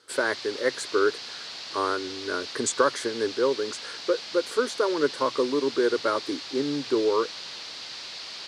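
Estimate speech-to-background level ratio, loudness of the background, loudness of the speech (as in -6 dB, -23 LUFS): 9.0 dB, -36.0 LUFS, -27.0 LUFS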